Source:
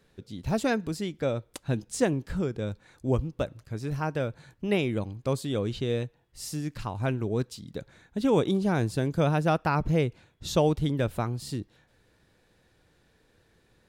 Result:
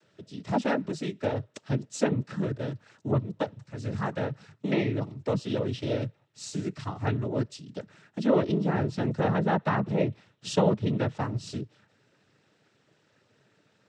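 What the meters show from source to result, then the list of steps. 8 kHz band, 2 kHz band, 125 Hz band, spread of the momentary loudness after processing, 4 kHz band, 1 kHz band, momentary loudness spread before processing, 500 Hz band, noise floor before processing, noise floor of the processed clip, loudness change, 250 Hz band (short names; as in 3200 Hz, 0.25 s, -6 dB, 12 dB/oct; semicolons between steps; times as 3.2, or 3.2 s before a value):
-3.5 dB, -1.0 dB, -1.0 dB, 13 LU, -2.0 dB, 0.0 dB, 12 LU, -1.0 dB, -66 dBFS, -68 dBFS, -0.5 dB, 0.0 dB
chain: treble ducked by the level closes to 2600 Hz, closed at -20 dBFS; noise vocoder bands 12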